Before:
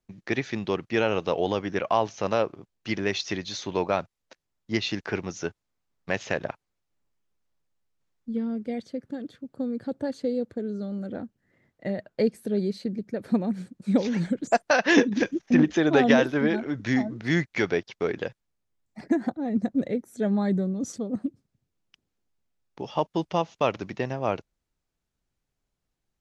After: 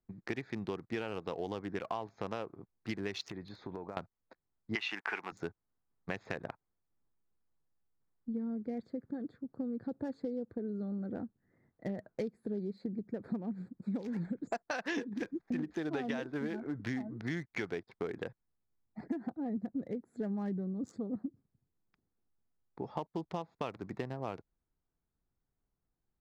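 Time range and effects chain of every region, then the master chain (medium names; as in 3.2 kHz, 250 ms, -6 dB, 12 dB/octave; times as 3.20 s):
3.30–3.97 s: compression 10:1, threshold -33 dBFS + distance through air 110 m
4.75–5.32 s: high-pass 300 Hz + high-order bell 1.5 kHz +13 dB 2.3 oct
whole clip: local Wiener filter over 15 samples; peaking EQ 580 Hz -6 dB 0.24 oct; compression 6:1, threshold -31 dBFS; trim -3 dB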